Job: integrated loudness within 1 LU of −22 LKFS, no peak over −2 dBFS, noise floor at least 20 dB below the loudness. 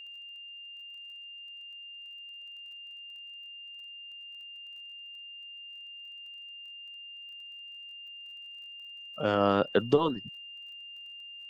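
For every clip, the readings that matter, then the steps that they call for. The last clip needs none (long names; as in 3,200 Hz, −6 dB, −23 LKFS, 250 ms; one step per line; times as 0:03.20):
crackle rate 23 per second; interfering tone 2,800 Hz; level of the tone −43 dBFS; integrated loudness −36.0 LKFS; sample peak −10.5 dBFS; target loudness −22.0 LKFS
→ click removal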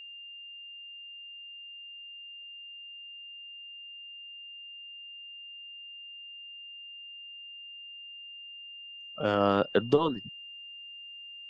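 crackle rate 0 per second; interfering tone 2,800 Hz; level of the tone −43 dBFS
→ notch filter 2,800 Hz, Q 30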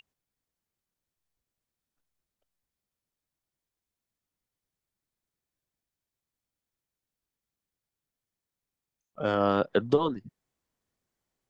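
interfering tone none found; integrated loudness −27.5 LKFS; sample peak −10.5 dBFS; target loudness −22.0 LKFS
→ level +5.5 dB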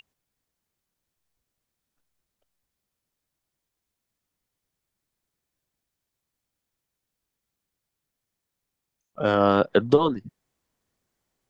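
integrated loudness −22.0 LKFS; sample peak −5.0 dBFS; background noise floor −84 dBFS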